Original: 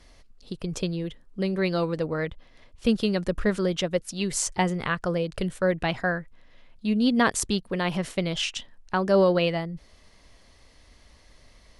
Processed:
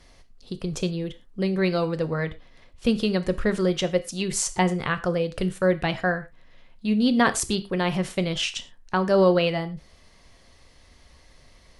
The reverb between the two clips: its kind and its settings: gated-style reverb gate 140 ms falling, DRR 10 dB; trim +1 dB

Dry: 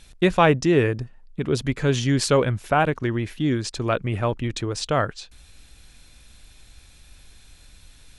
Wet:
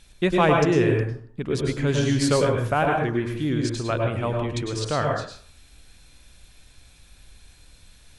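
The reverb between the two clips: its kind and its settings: plate-style reverb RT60 0.5 s, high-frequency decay 0.6×, pre-delay 90 ms, DRR 1 dB; trim -3.5 dB

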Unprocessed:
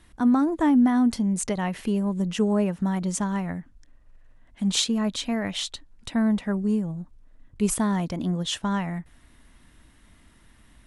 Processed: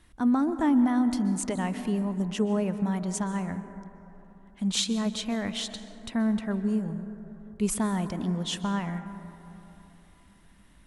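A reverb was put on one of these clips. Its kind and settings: plate-style reverb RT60 3.4 s, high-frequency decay 0.25×, pre-delay 115 ms, DRR 10.5 dB; trim -3.5 dB

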